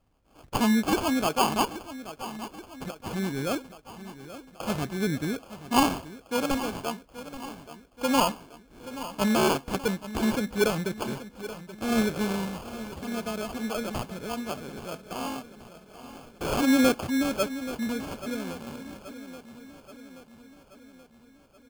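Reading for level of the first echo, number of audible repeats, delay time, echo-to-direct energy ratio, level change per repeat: -14.0 dB, 5, 829 ms, -12.0 dB, -4.5 dB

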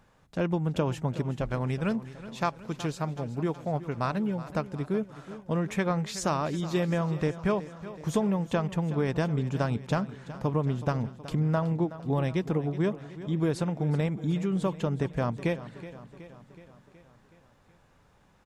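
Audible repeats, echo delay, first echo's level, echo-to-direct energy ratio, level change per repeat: 5, 372 ms, -15.0 dB, -13.0 dB, -4.5 dB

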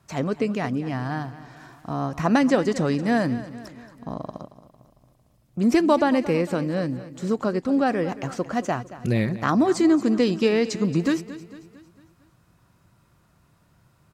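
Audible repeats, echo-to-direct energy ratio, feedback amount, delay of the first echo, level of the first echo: 4, -14.0 dB, 50%, 226 ms, -15.5 dB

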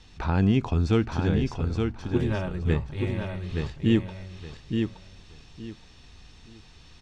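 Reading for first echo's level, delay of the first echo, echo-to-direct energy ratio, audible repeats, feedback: -5.0 dB, 871 ms, -5.0 dB, 3, 23%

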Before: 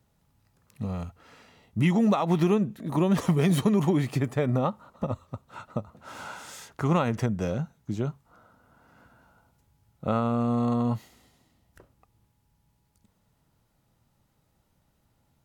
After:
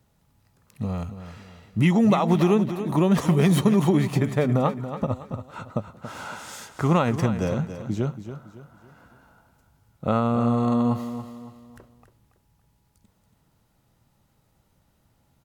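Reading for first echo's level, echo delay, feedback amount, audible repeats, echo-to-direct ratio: -11.0 dB, 280 ms, 38%, 3, -10.5 dB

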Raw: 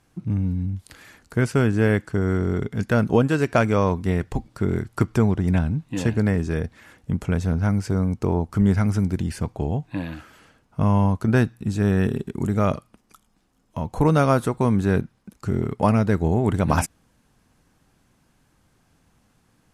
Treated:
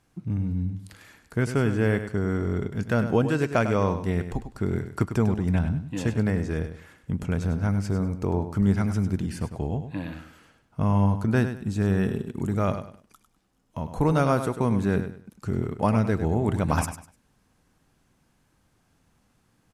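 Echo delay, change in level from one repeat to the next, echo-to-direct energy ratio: 100 ms, -11.5 dB, -9.5 dB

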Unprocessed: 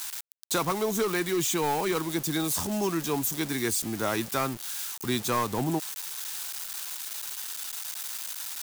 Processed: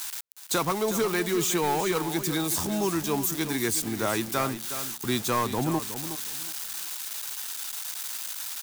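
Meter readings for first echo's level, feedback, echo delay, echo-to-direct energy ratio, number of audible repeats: -11.0 dB, 22%, 366 ms, -11.0 dB, 2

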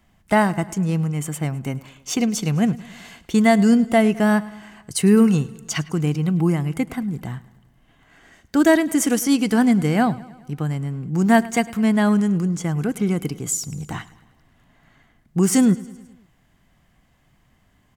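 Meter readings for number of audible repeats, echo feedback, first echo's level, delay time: 4, 58%, -20.0 dB, 105 ms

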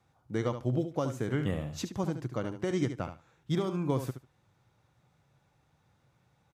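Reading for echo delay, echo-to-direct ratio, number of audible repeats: 73 ms, -9.5 dB, 2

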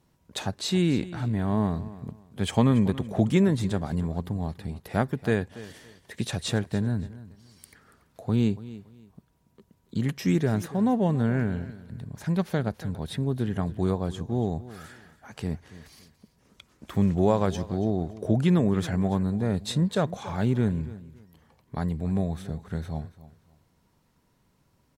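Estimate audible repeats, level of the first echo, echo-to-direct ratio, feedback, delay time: 2, -17.0 dB, -17.0 dB, 25%, 283 ms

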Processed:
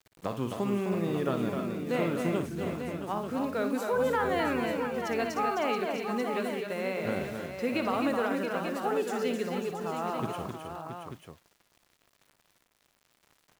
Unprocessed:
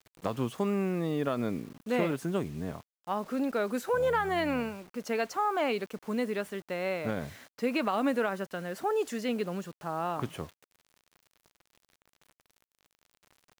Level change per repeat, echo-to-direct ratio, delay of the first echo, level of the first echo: no regular repeats, -1.0 dB, 59 ms, -9.0 dB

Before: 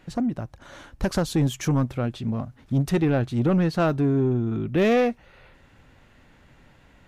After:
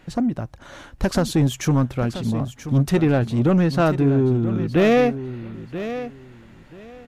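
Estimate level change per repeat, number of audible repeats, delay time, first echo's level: -14.0 dB, 2, 982 ms, -12.0 dB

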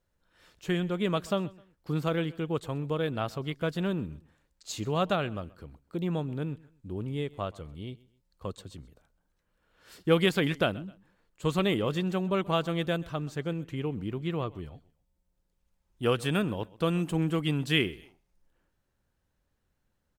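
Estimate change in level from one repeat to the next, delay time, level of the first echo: -9.5 dB, 130 ms, -22.0 dB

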